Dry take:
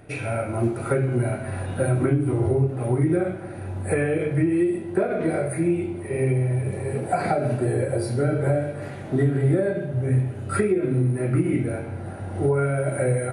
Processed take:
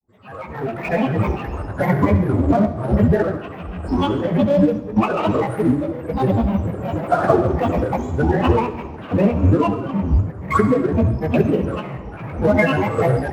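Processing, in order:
fade in at the beginning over 1.04 s
high shelf with overshoot 1,900 Hz −12 dB, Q 3
hum removal 113.5 Hz, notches 2
granular cloud 100 ms, grains 20 per second, spray 14 ms, pitch spread up and down by 12 semitones
in parallel at −4.5 dB: gain into a clipping stage and back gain 34.5 dB
on the sum: feedback echo with a high-pass in the loop 68 ms, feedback 63%, high-pass 180 Hz, level −14 dB
on a send at −11 dB: convolution reverb RT60 1.0 s, pre-delay 45 ms
on the sum: expander for the loud parts 1.5 to 1, over −43 dBFS
level +6 dB

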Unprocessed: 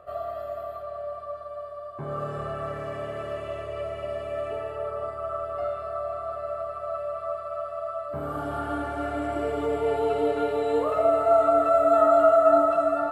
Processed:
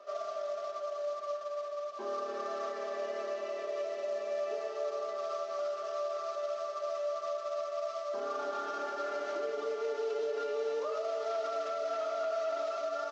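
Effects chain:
variable-slope delta modulation 32 kbit/s
Butterworth high-pass 250 Hz 48 dB per octave
comb filter 5 ms, depth 98%
downward compressor 2 to 1, threshold −27 dBFS, peak gain reduction 8.5 dB
brickwall limiter −21.5 dBFS, peak gain reduction 7 dB
on a send: feedback echo with a low-pass in the loop 305 ms, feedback 76%, low-pass 810 Hz, level −15 dB
on the sum: level −6 dB

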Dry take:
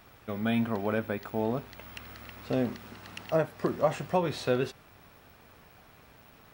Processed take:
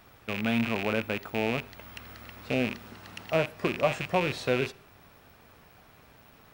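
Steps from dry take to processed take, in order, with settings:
loose part that buzzes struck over −40 dBFS, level −21 dBFS
on a send: convolution reverb RT60 0.50 s, pre-delay 5 ms, DRR 22.5 dB

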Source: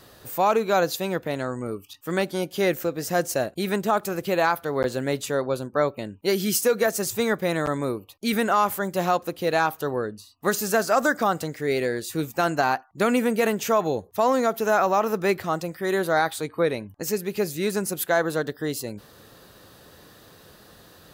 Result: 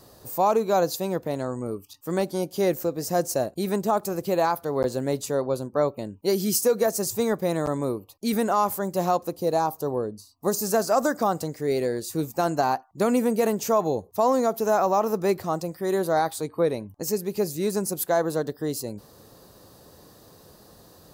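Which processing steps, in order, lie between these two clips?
flat-topped bell 2,200 Hz −9 dB, from 0:09.34 −16 dB, from 0:10.61 −9 dB

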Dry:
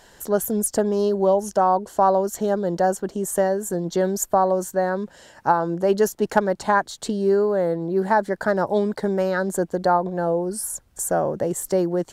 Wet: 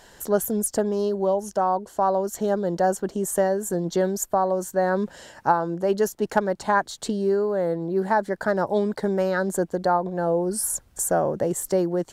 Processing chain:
speech leveller 0.5 s
level −2 dB

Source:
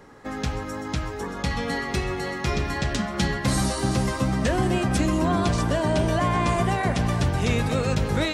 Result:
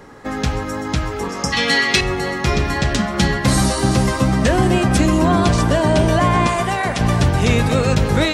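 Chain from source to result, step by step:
0:01.29–0:02.01: meter weighting curve D
0:01.13–0:01.50: healed spectral selection 1,300–4,900 Hz before
0:06.47–0:07.01: low-shelf EQ 440 Hz −9 dB
level +7.5 dB

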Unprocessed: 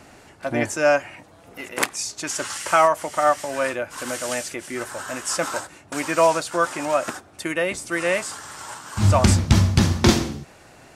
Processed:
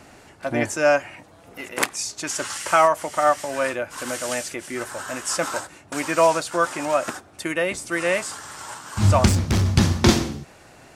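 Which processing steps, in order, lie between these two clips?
0:09.28–0:09.68: gain into a clipping stage and back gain 16 dB

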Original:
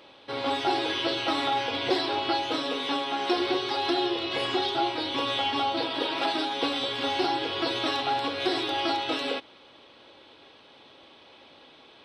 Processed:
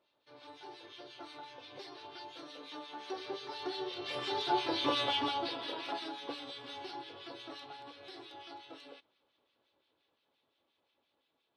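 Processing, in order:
source passing by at 0:05.07, 7 m/s, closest 2.8 metres
two-band tremolo in antiphase 5.5 Hz, crossover 1,500 Hz
wrong playback speed 24 fps film run at 25 fps

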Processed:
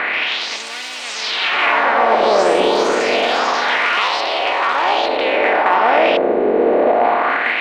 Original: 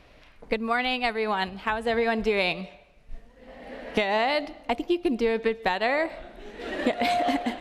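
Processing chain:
compressor on every frequency bin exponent 0.2
bass and treble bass +3 dB, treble −10 dB
in parallel at +1 dB: brickwall limiter −12 dBFS, peak gain reduction 11 dB
on the sum: auto-filter band-pass sine 0.27 Hz 440–6,200 Hz
delay with pitch and tempo change per echo 135 ms, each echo +4 semitones, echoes 3
harmonic generator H 8 −43 dB, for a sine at −4 dBFS
level +3 dB

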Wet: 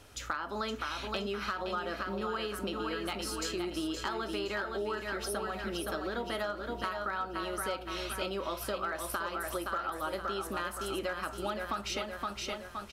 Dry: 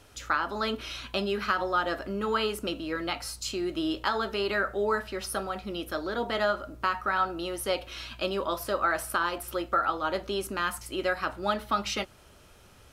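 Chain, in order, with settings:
on a send: repeating echo 518 ms, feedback 42%, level −6 dB
on the sum: hard clipping −17 dBFS, distortion −28 dB
downward compressor, threshold −32 dBFS, peak gain reduction 11 dB

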